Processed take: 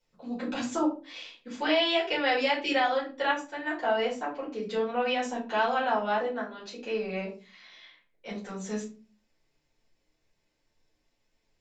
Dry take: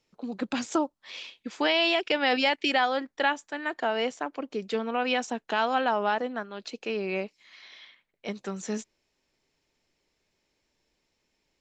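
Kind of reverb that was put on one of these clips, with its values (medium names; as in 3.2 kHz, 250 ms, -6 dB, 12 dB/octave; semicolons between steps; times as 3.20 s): simulated room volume 180 m³, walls furnished, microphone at 4.8 m; trim -11.5 dB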